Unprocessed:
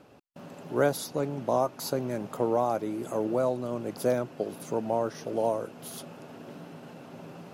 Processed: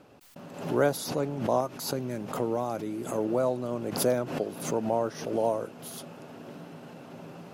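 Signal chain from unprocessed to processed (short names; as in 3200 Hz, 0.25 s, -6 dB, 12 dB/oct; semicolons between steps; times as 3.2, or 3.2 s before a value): 1.6–3.18 dynamic EQ 760 Hz, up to -6 dB, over -38 dBFS, Q 0.73; backwards sustainer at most 82 dB/s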